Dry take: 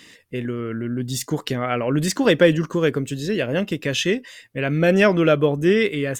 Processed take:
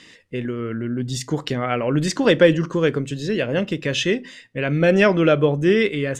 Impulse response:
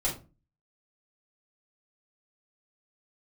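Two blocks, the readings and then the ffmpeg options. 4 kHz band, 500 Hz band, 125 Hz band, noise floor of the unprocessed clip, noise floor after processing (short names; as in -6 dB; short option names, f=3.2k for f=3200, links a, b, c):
0.0 dB, +1.0 dB, +0.5 dB, -51 dBFS, -48 dBFS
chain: -filter_complex "[0:a]lowpass=7.1k,asplit=2[a][b];[1:a]atrim=start_sample=2205[c];[b][c]afir=irnorm=-1:irlink=0,volume=-24dB[d];[a][d]amix=inputs=2:normalize=0"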